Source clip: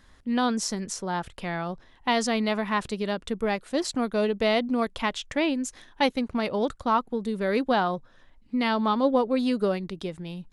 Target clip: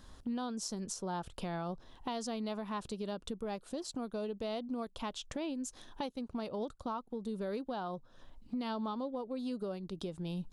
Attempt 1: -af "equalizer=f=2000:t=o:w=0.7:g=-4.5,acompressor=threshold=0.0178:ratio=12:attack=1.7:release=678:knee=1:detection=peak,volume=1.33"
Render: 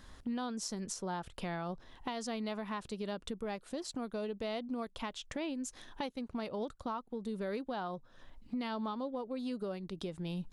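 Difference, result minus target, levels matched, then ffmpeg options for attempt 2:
2 kHz band +4.0 dB
-af "equalizer=f=2000:t=o:w=0.7:g=-12,acompressor=threshold=0.0178:ratio=12:attack=1.7:release=678:knee=1:detection=peak,volume=1.33"

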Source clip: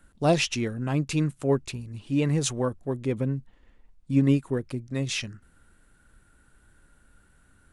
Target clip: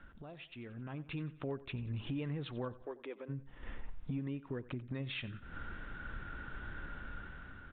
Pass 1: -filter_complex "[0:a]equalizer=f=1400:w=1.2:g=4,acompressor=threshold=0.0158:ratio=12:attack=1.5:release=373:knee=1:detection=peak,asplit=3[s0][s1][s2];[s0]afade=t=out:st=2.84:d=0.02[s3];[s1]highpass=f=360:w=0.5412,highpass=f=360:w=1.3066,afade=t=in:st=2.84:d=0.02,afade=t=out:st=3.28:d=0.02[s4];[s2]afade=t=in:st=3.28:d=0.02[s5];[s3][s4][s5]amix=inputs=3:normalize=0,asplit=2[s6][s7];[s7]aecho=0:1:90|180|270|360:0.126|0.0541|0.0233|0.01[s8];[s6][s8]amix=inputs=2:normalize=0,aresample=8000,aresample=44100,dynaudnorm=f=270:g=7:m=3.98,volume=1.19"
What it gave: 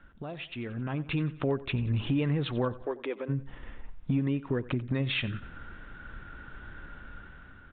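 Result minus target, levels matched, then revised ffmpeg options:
compression: peak gain reduction -11 dB
-filter_complex "[0:a]equalizer=f=1400:w=1.2:g=4,acompressor=threshold=0.00398:ratio=12:attack=1.5:release=373:knee=1:detection=peak,asplit=3[s0][s1][s2];[s0]afade=t=out:st=2.84:d=0.02[s3];[s1]highpass=f=360:w=0.5412,highpass=f=360:w=1.3066,afade=t=in:st=2.84:d=0.02,afade=t=out:st=3.28:d=0.02[s4];[s2]afade=t=in:st=3.28:d=0.02[s5];[s3][s4][s5]amix=inputs=3:normalize=0,asplit=2[s6][s7];[s7]aecho=0:1:90|180|270|360:0.126|0.0541|0.0233|0.01[s8];[s6][s8]amix=inputs=2:normalize=0,aresample=8000,aresample=44100,dynaudnorm=f=270:g=7:m=3.98,volume=1.19"

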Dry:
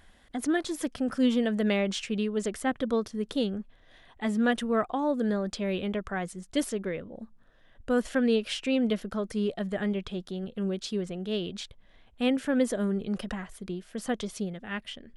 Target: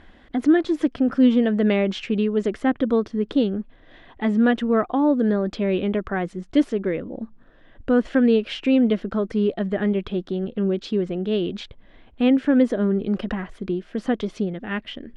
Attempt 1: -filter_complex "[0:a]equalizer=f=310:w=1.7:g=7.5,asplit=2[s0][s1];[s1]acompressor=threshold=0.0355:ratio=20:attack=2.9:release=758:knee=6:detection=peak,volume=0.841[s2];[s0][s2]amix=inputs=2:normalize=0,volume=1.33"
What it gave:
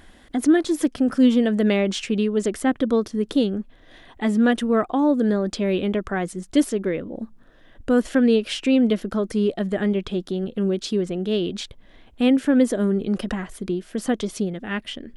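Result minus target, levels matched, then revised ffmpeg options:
4 kHz band +3.5 dB
-filter_complex "[0:a]lowpass=3200,equalizer=f=310:w=1.7:g=7.5,asplit=2[s0][s1];[s1]acompressor=threshold=0.0355:ratio=20:attack=2.9:release=758:knee=6:detection=peak,volume=0.841[s2];[s0][s2]amix=inputs=2:normalize=0,volume=1.33"

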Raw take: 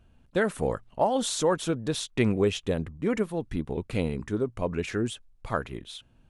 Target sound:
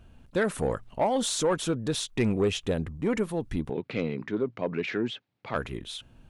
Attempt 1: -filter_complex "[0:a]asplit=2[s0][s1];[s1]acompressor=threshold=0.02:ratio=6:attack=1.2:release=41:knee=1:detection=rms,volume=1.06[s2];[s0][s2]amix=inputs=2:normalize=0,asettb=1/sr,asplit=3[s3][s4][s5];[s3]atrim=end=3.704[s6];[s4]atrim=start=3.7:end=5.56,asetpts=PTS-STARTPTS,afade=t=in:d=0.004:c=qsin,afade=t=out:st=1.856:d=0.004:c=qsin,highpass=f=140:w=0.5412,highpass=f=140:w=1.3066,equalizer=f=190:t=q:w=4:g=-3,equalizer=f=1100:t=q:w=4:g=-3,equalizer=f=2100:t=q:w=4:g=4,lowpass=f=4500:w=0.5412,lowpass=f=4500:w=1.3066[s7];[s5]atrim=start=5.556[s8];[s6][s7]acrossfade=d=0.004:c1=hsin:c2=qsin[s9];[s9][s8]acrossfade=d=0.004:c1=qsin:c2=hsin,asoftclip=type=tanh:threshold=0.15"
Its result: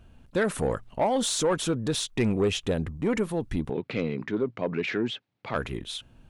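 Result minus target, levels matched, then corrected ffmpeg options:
compression: peak gain reduction -9 dB
-filter_complex "[0:a]asplit=2[s0][s1];[s1]acompressor=threshold=0.00596:ratio=6:attack=1.2:release=41:knee=1:detection=rms,volume=1.06[s2];[s0][s2]amix=inputs=2:normalize=0,asettb=1/sr,asplit=3[s3][s4][s5];[s3]atrim=end=3.704[s6];[s4]atrim=start=3.7:end=5.56,asetpts=PTS-STARTPTS,afade=t=in:d=0.004:c=qsin,afade=t=out:st=1.856:d=0.004:c=qsin,highpass=f=140:w=0.5412,highpass=f=140:w=1.3066,equalizer=f=190:t=q:w=4:g=-3,equalizer=f=1100:t=q:w=4:g=-3,equalizer=f=2100:t=q:w=4:g=4,lowpass=f=4500:w=0.5412,lowpass=f=4500:w=1.3066[s7];[s5]atrim=start=5.556[s8];[s6][s7]acrossfade=d=0.004:c1=hsin:c2=qsin[s9];[s9][s8]acrossfade=d=0.004:c1=qsin:c2=hsin,asoftclip=type=tanh:threshold=0.15"

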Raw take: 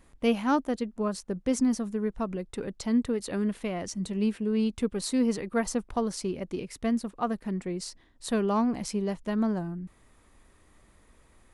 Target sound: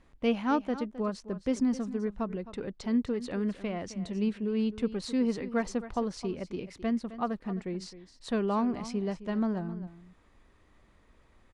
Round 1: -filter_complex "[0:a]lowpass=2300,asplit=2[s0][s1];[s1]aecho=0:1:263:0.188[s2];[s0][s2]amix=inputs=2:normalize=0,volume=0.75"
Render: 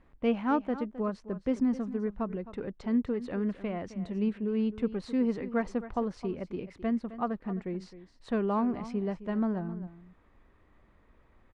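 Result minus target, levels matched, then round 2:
4 kHz band -7.5 dB
-filter_complex "[0:a]lowpass=4900,asplit=2[s0][s1];[s1]aecho=0:1:263:0.188[s2];[s0][s2]amix=inputs=2:normalize=0,volume=0.75"

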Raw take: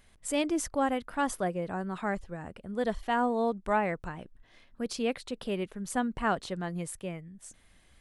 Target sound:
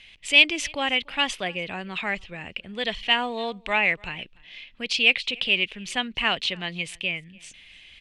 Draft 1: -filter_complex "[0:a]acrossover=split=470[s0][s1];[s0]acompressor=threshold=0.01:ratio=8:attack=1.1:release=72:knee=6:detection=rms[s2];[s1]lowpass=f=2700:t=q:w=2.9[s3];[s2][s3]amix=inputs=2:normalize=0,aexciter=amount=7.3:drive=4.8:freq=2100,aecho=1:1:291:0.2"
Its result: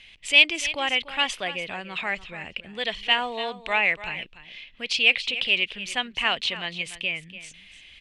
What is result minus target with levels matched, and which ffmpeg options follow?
echo-to-direct +12 dB; compression: peak gain reduction +7.5 dB
-filter_complex "[0:a]acrossover=split=470[s0][s1];[s0]acompressor=threshold=0.0266:ratio=8:attack=1.1:release=72:knee=6:detection=rms[s2];[s1]lowpass=f=2700:t=q:w=2.9[s3];[s2][s3]amix=inputs=2:normalize=0,aexciter=amount=7.3:drive=4.8:freq=2100,aecho=1:1:291:0.0501"

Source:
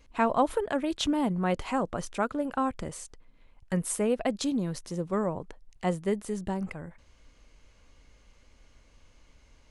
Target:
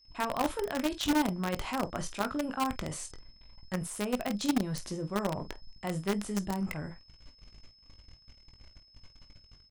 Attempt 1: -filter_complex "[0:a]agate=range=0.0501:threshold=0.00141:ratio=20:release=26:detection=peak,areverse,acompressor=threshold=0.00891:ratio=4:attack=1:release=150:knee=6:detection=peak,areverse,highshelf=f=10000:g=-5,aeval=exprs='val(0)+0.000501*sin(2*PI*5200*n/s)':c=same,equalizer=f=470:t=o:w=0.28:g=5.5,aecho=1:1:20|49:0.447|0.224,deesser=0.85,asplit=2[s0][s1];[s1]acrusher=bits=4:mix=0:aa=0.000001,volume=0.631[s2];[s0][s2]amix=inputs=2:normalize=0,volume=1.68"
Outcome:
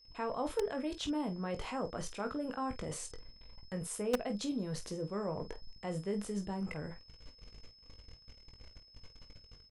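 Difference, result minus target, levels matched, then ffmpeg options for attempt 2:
compression: peak gain reduction +5.5 dB; 500 Hz band +3.5 dB
-filter_complex "[0:a]agate=range=0.0501:threshold=0.00141:ratio=20:release=26:detection=peak,areverse,acompressor=threshold=0.02:ratio=4:attack=1:release=150:knee=6:detection=peak,areverse,highshelf=f=10000:g=-5,aeval=exprs='val(0)+0.000501*sin(2*PI*5200*n/s)':c=same,equalizer=f=470:t=o:w=0.28:g=-6,aecho=1:1:20|49:0.447|0.224,deesser=0.85,asplit=2[s0][s1];[s1]acrusher=bits=4:mix=0:aa=0.000001,volume=0.631[s2];[s0][s2]amix=inputs=2:normalize=0,volume=1.68"

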